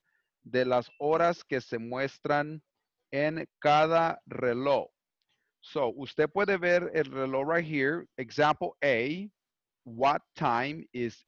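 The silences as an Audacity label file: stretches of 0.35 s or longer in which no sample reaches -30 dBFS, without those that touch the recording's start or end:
2.440000	3.130000	silence
4.820000	5.760000	silence
9.150000	10.000000	silence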